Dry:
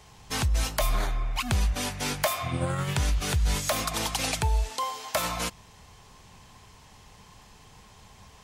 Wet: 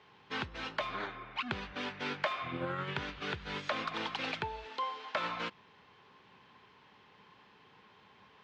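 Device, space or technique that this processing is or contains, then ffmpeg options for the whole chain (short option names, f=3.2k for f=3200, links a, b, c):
kitchen radio: -af "highpass=220,equalizer=f=380:t=q:w=4:g=3,equalizer=f=690:t=q:w=4:g=-7,equalizer=f=1.5k:t=q:w=4:g=4,lowpass=f=3.6k:w=0.5412,lowpass=f=3.6k:w=1.3066,volume=-5dB"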